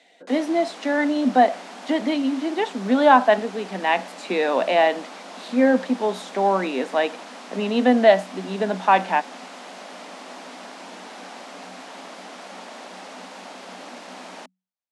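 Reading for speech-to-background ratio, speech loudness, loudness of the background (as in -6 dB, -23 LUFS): 18.0 dB, -21.0 LUFS, -39.0 LUFS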